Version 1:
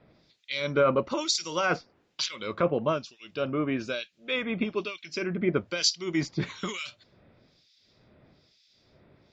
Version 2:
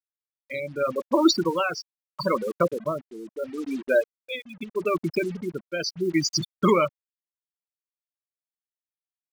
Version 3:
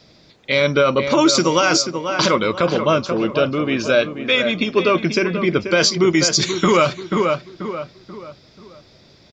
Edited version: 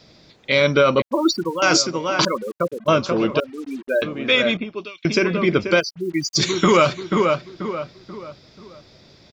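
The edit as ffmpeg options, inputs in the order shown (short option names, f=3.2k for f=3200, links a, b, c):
-filter_complex "[1:a]asplit=4[a][b][c][d];[2:a]asplit=6[e][f][g][h][i][j];[e]atrim=end=1.022[k];[a]atrim=start=1.018:end=1.622[l];[f]atrim=start=1.618:end=2.252[m];[b]atrim=start=2.248:end=2.882[n];[g]atrim=start=2.878:end=3.402[o];[c]atrim=start=3.398:end=4.022[p];[h]atrim=start=4.018:end=4.572[q];[0:a]atrim=start=4.568:end=5.052[r];[i]atrim=start=5.048:end=5.81[s];[d]atrim=start=5.79:end=6.37[t];[j]atrim=start=6.35[u];[k][l]acrossfade=d=0.004:c1=hsin:c2=hsin[v];[v][m]acrossfade=d=0.004:c1=hsin:c2=hsin[w];[w][n]acrossfade=d=0.004:c1=hsin:c2=hsin[x];[x][o]acrossfade=d=0.004:c1=hsin:c2=hsin[y];[y][p]acrossfade=d=0.004:c1=hsin:c2=hsin[z];[z][q]acrossfade=d=0.004:c1=hsin:c2=hsin[aa];[aa][r]acrossfade=d=0.004:c1=hsin:c2=hsin[ab];[ab][s]acrossfade=d=0.004:c1=hsin:c2=hsin[ac];[ac][t]acrossfade=d=0.02:c1=tri:c2=tri[ad];[ad][u]acrossfade=d=0.02:c1=tri:c2=tri"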